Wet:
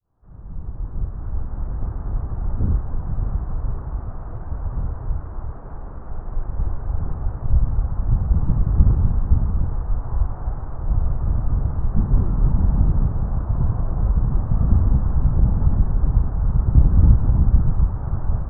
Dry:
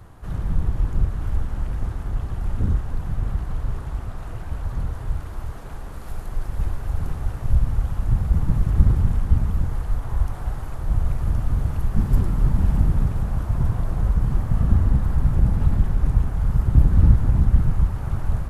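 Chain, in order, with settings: fade-in on the opening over 2.04 s; low-pass 1.3 kHz 24 dB/octave; trim +1 dB

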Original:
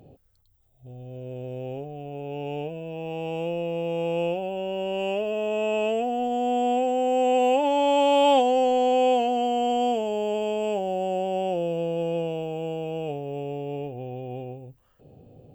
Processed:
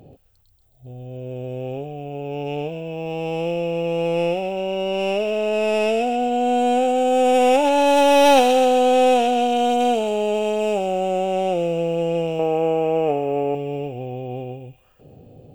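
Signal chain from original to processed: tracing distortion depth 0.12 ms; 12.39–13.55 s: ten-band graphic EQ 125 Hz -5 dB, 250 Hz +4 dB, 500 Hz +4 dB, 1 kHz +9 dB, 2 kHz +8 dB, 4 kHz -11 dB; feedback echo behind a high-pass 132 ms, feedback 54%, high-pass 2 kHz, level -5 dB; trim +5 dB

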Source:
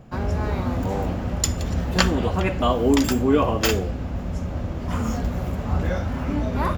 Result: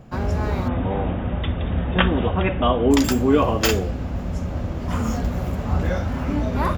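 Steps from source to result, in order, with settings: 0.68–2.91 s: brick-wall FIR low-pass 3.8 kHz; trim +1.5 dB

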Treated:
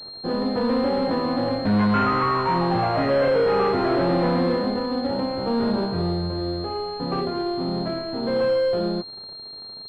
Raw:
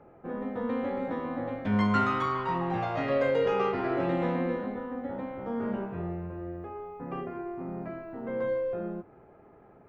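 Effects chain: waveshaping leveller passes 3; class-D stage that switches slowly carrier 4.2 kHz

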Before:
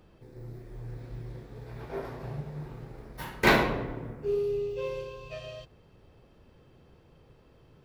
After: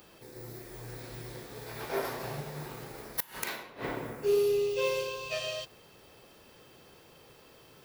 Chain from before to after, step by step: RIAA curve recording; inverted gate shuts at -22 dBFS, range -25 dB; trim +6.5 dB

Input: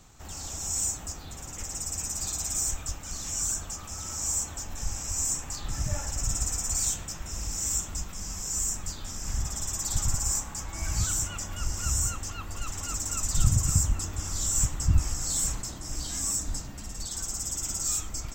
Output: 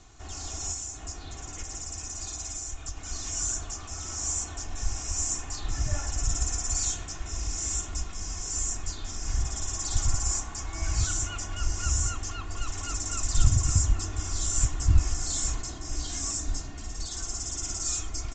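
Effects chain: comb 2.8 ms, depth 52%; 0.72–2.97 s: compression, threshold -31 dBFS, peak gain reduction 7.5 dB; A-law 128 kbps 16 kHz

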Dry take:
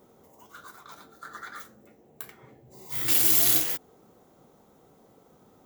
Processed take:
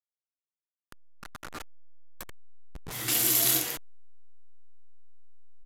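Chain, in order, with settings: send-on-delta sampling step -32 dBFS; resampled via 32 kHz

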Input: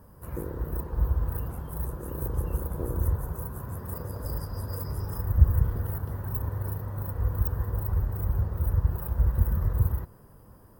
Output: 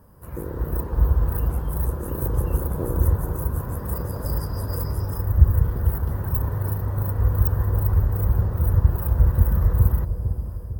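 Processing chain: level rider gain up to 6.5 dB; on a send: bucket-brigade echo 451 ms, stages 2048, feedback 49%, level -8 dB

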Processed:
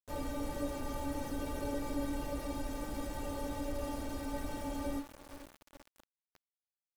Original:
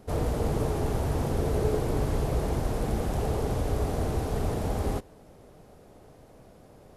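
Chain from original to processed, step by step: inharmonic resonator 280 Hz, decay 0.22 s, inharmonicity 0.008; echo that smears into a reverb 510 ms, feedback 55%, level -14 dB; small samples zeroed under -52 dBFS; trim +5.5 dB

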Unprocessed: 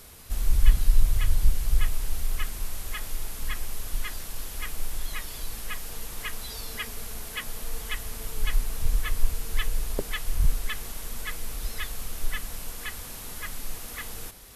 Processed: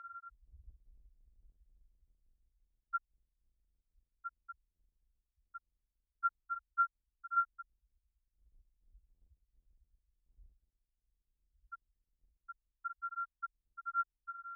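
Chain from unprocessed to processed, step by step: sorted samples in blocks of 32 samples; loudest bins only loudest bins 1; high-pass 530 Hz 12 dB/octave; trim +12 dB

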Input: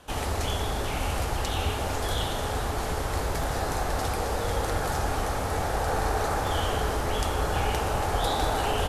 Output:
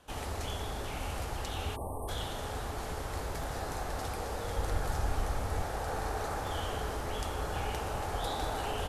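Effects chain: 1.76–2.08 s: spectral selection erased 1.2–8.1 kHz; 4.58–5.63 s: bass shelf 79 Hz +10.5 dB; trim -8.5 dB

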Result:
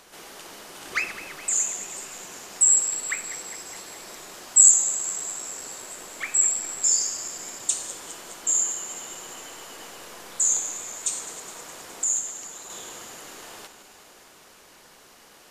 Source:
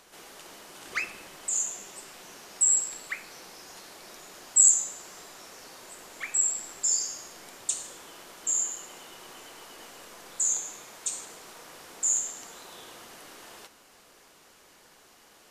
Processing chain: backward echo that repeats 104 ms, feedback 82%, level -14 dB; 12.04–12.70 s: harmonic-percussive split harmonic -10 dB; trim +4.5 dB

